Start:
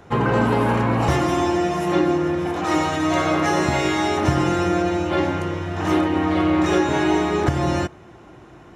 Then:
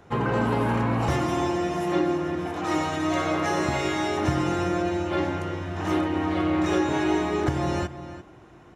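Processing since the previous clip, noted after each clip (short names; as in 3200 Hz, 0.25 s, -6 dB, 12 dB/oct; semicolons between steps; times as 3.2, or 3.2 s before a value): outdoor echo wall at 59 m, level -12 dB; gain -5.5 dB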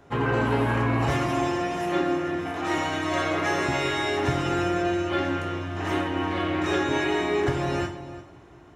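dynamic EQ 2100 Hz, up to +5 dB, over -43 dBFS, Q 1.1; reverb, pre-delay 3 ms, DRR 3.5 dB; gain -2.5 dB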